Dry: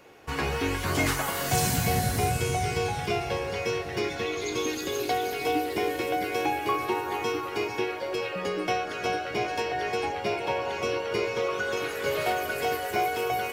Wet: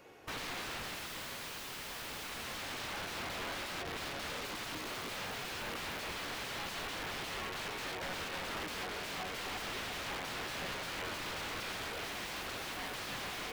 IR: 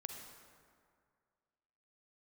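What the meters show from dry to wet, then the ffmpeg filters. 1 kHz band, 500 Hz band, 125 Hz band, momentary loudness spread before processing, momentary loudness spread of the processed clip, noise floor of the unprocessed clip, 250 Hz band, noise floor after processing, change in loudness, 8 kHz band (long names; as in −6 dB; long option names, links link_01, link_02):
−14.0 dB, −17.5 dB, −18.0 dB, 4 LU, 2 LU, −35 dBFS, −15.0 dB, −44 dBFS, −11.5 dB, −10.0 dB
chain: -filter_complex "[0:a]aeval=exprs='(mod(28.2*val(0)+1,2)-1)/28.2':channel_layout=same,acrossover=split=4400[link_01][link_02];[link_02]acompressor=threshold=-45dB:ratio=4:attack=1:release=60[link_03];[link_01][link_03]amix=inputs=2:normalize=0,volume=-4.5dB"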